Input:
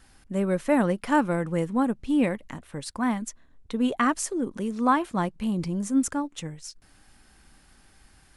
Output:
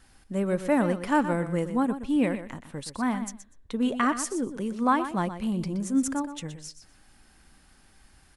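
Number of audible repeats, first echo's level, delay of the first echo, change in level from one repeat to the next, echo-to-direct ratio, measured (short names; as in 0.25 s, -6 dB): 2, -11.0 dB, 0.122 s, -16.0 dB, -11.0 dB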